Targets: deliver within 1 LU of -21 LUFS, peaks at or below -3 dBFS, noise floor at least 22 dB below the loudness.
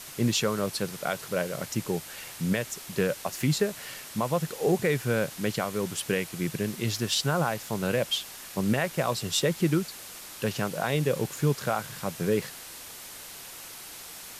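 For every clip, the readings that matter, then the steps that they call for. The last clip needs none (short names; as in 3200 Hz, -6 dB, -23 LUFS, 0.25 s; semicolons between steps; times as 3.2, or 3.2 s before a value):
noise floor -44 dBFS; noise floor target -51 dBFS; loudness -28.5 LUFS; peak -13.5 dBFS; loudness target -21.0 LUFS
-> denoiser 7 dB, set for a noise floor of -44 dBFS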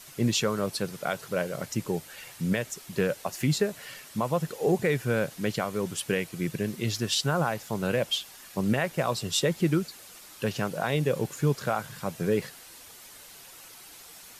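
noise floor -49 dBFS; noise floor target -51 dBFS
-> denoiser 6 dB, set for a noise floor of -49 dBFS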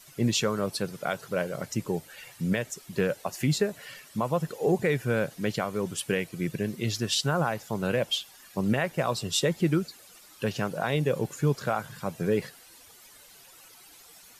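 noise floor -53 dBFS; loudness -29.0 LUFS; peak -14.0 dBFS; loudness target -21.0 LUFS
-> gain +8 dB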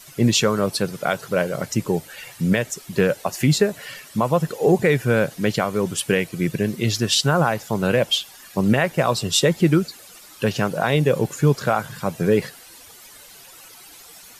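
loudness -21.0 LUFS; peak -6.0 dBFS; noise floor -45 dBFS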